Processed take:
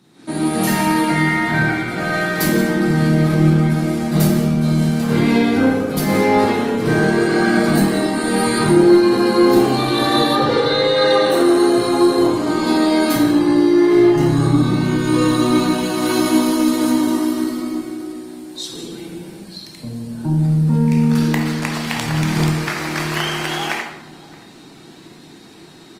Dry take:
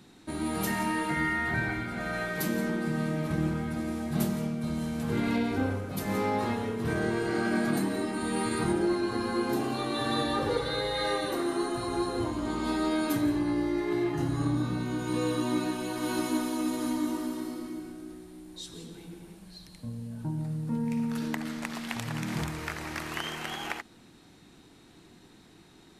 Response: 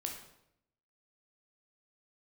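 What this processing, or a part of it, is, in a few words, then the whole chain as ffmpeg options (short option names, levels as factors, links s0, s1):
far-field microphone of a smart speaker: -filter_complex "[0:a]asettb=1/sr,asplit=3[s0][s1][s2];[s0]atrim=end=10.334[s3];[s1]atrim=start=10.33:end=11.3,asetpts=PTS-STARTPTS,afade=t=in:d=0.004:c=qsin,afade=t=out:st=0.966:d=0.004:c=qsin,lowpass=6200[s4];[s2]atrim=start=11.296[s5];[s3][s4]acrossfade=d=0.004:c1=hsin:c2=qsin[s6];[s6][s5]acrossfade=d=0.004:c1=qsin:c2=hsin,equalizer=f=4700:t=o:w=0.49:g=3.5,asplit=2[s7][s8];[s8]adelay=623,lowpass=f=920:p=1,volume=0.126,asplit=2[s9][s10];[s10]adelay=623,lowpass=f=920:p=1,volume=0.41,asplit=2[s11][s12];[s12]adelay=623,lowpass=f=920:p=1,volume=0.41[s13];[s7][s9][s11][s13]amix=inputs=4:normalize=0[s14];[1:a]atrim=start_sample=2205[s15];[s14][s15]afir=irnorm=-1:irlink=0,highpass=f=120:w=0.5412,highpass=f=120:w=1.3066,dynaudnorm=f=130:g=3:m=3.55,volume=1.33" -ar 48000 -c:a libopus -b:a 24k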